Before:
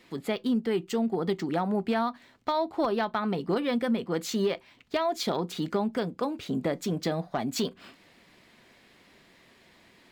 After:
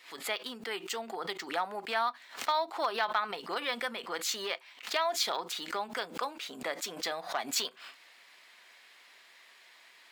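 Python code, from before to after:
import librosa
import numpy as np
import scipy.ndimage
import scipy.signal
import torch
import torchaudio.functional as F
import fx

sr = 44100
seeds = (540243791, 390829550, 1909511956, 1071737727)

y = scipy.signal.sosfilt(scipy.signal.butter(2, 1000.0, 'highpass', fs=sr, output='sos'), x)
y = fx.pre_swell(y, sr, db_per_s=140.0)
y = y * librosa.db_to_amplitude(3.0)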